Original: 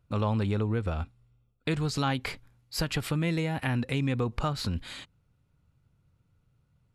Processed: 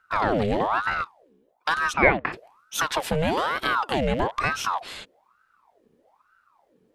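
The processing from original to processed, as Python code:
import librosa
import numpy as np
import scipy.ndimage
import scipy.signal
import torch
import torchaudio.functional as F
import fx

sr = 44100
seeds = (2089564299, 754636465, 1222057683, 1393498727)

y = fx.rattle_buzz(x, sr, strikes_db=-38.0, level_db=-36.0)
y = fx.lowpass_res(y, sr, hz=1400.0, q=4.9, at=(1.92, 2.32), fade=0.02)
y = fx.ring_lfo(y, sr, carrier_hz=870.0, swing_pct=65, hz=1.1)
y = F.gain(torch.from_numpy(y), 7.0).numpy()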